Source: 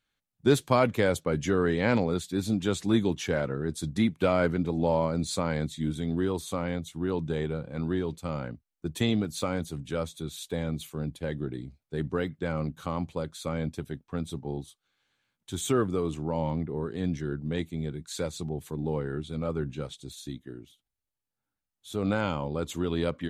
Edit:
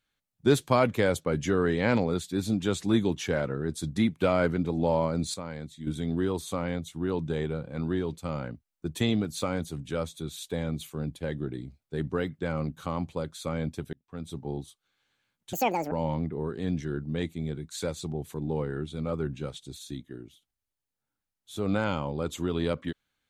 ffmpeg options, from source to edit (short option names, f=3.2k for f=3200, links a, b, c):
-filter_complex "[0:a]asplit=6[a][b][c][d][e][f];[a]atrim=end=5.342[g];[b]atrim=start=5.338:end=5.872,asetpts=PTS-STARTPTS,volume=-9dB[h];[c]atrim=start=5.868:end=13.93,asetpts=PTS-STARTPTS,afade=t=out:st=8.058:d=0.004:c=hsin[i];[d]atrim=start=13.93:end=15.534,asetpts=PTS-STARTPTS,afade=t=in:d=0.51[j];[e]atrim=start=15.53:end=16.28,asetpts=PTS-STARTPTS,asetrate=85995,aresample=44100[k];[f]atrim=start=16.276[l];[g][h]acrossfade=d=0.004:c1=hsin:c2=hsin[m];[i][j]concat=n=2:v=0:a=1[n];[m][n]acrossfade=d=0.004:c1=hsin:c2=hsin[o];[o][k]acrossfade=d=0.004:c1=hsin:c2=hsin[p];[p][l]acrossfade=d=0.004:c1=hsin:c2=hsin"